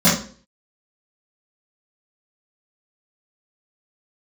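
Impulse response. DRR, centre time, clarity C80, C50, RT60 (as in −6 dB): −12.0 dB, 40 ms, 10.5 dB, 4.5 dB, 0.45 s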